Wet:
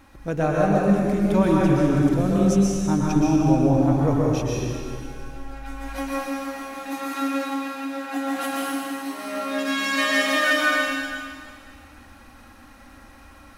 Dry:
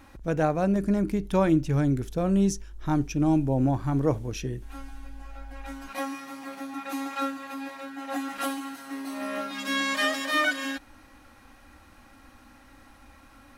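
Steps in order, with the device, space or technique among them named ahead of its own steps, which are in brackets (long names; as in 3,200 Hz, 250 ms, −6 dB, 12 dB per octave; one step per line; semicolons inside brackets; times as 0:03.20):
stairwell (convolution reverb RT60 2.1 s, pre-delay 114 ms, DRR −4.5 dB)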